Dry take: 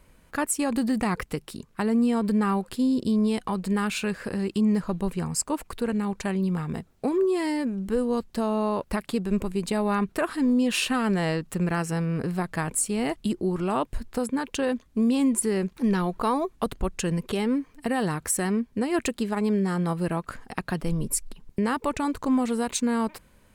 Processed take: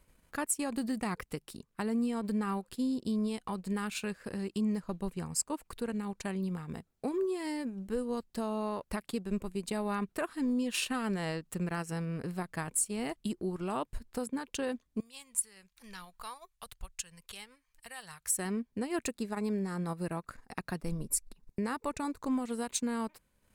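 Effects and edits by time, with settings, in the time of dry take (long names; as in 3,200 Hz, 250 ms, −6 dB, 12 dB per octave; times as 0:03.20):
0:15.00–0:18.37: guitar amp tone stack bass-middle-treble 10-0-10
0:19.04–0:22.27: notch filter 3,100 Hz, Q 6.4
whole clip: high-shelf EQ 4,400 Hz +5 dB; transient designer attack +1 dB, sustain −8 dB; level −9 dB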